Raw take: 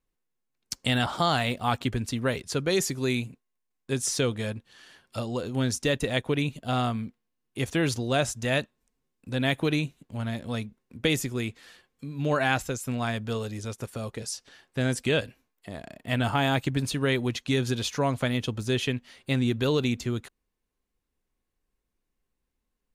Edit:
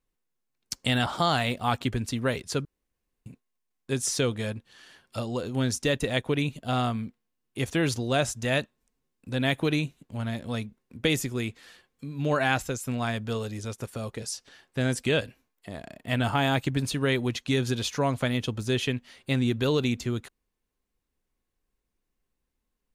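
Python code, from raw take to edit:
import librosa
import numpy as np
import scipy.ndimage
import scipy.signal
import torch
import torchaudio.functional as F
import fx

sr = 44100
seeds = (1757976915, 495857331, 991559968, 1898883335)

y = fx.edit(x, sr, fx.room_tone_fill(start_s=2.65, length_s=0.61), tone=tone)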